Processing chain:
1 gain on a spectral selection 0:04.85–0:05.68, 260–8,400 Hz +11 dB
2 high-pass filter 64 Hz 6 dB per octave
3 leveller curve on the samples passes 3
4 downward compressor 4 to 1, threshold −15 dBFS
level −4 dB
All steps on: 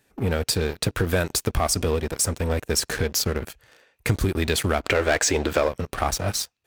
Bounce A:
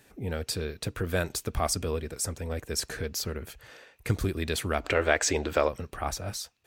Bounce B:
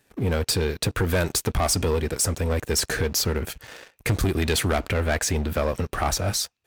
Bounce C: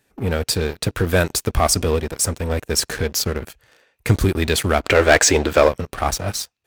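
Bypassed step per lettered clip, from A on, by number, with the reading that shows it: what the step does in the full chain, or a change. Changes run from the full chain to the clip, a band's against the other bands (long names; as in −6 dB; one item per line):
3, change in crest factor +7.0 dB
1, 125 Hz band +2.0 dB
4, 500 Hz band +1.5 dB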